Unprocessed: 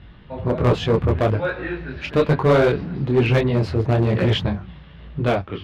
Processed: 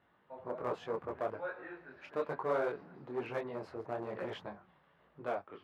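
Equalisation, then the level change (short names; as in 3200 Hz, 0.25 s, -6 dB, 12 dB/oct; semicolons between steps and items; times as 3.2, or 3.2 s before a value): HPF 960 Hz 12 dB/oct; tilt -3 dB/oct; bell 3300 Hz -14 dB 2.1 oct; -7.0 dB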